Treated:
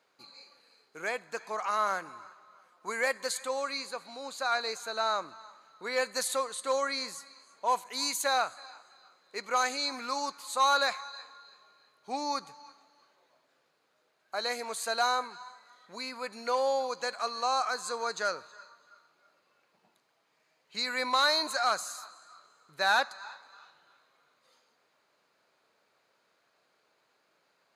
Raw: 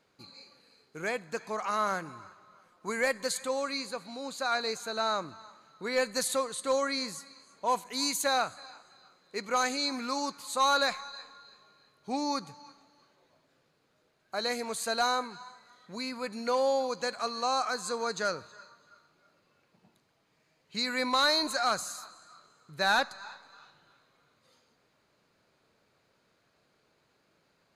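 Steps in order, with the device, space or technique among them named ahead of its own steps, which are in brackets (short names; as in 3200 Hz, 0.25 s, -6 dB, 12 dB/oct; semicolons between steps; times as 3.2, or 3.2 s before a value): filter by subtraction (in parallel: LPF 840 Hz 12 dB/oct + phase invert); on the sum: gain -1 dB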